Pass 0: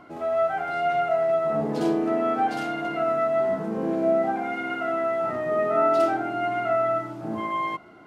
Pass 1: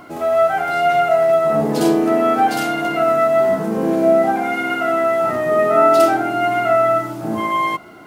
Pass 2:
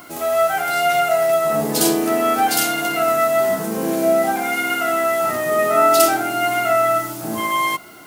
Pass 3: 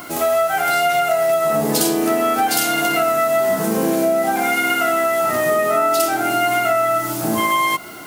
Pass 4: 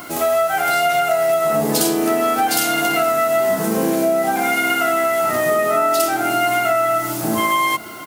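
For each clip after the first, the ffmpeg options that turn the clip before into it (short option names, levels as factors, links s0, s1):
-af "aemphasis=mode=production:type=50fm,volume=2.66"
-af "crystalizer=i=5.5:c=0,volume=0.631"
-af "acompressor=threshold=0.0891:ratio=6,volume=2.11"
-af "aecho=1:1:473:0.0891"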